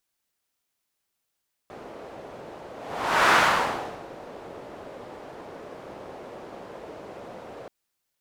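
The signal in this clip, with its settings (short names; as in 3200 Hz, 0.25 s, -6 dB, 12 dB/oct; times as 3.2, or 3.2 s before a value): whoosh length 5.98 s, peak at 1.62, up 0.63 s, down 0.83 s, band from 540 Hz, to 1300 Hz, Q 1.4, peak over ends 23 dB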